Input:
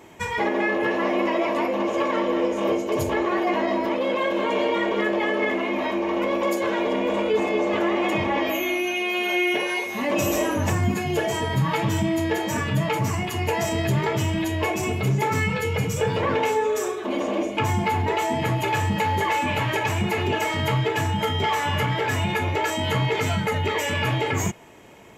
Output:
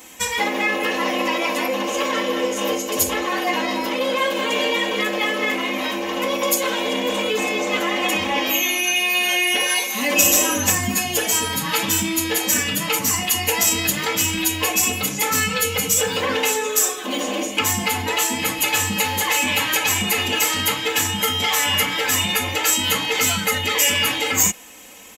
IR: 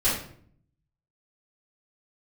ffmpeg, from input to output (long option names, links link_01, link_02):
-af "aecho=1:1:3.9:0.86,crystalizer=i=8.5:c=0,volume=-4dB"